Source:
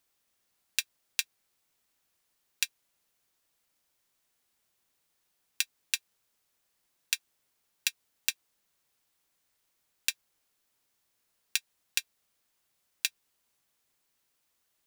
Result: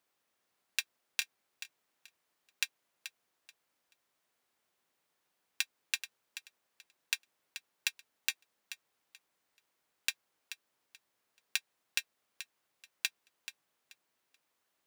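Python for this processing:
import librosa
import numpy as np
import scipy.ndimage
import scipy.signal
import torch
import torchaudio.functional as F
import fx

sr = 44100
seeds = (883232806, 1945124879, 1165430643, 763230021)

y = fx.highpass(x, sr, hz=280.0, slope=6)
y = fx.high_shelf(y, sr, hz=2900.0, db=-10.5)
y = fx.echo_feedback(y, sr, ms=432, feedback_pct=22, wet_db=-12)
y = y * 10.0 ** (3.0 / 20.0)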